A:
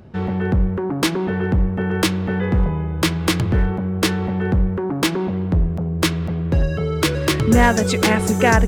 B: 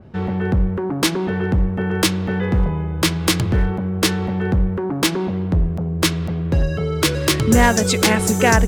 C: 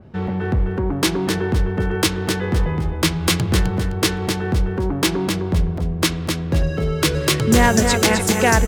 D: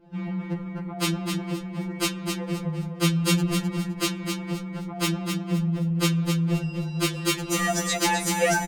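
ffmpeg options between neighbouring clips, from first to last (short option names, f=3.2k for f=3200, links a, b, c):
-af "adynamicequalizer=threshold=0.0178:dfrequency=3400:dqfactor=0.7:tfrequency=3400:tqfactor=0.7:attack=5:release=100:ratio=0.375:range=3:mode=boostabove:tftype=highshelf"
-af "aecho=1:1:258|516|774|1032:0.501|0.145|0.0421|0.0122,volume=-1dB"
-filter_complex "[0:a]asplit=2[a][b];[b]adelay=464,lowpass=f=1.7k:p=1,volume=-11dB,asplit=2[c][d];[d]adelay=464,lowpass=f=1.7k:p=1,volume=0.17[e];[a][c][e]amix=inputs=3:normalize=0,afftfilt=real='re*2.83*eq(mod(b,8),0)':imag='im*2.83*eq(mod(b,8),0)':win_size=2048:overlap=0.75,volume=-4dB"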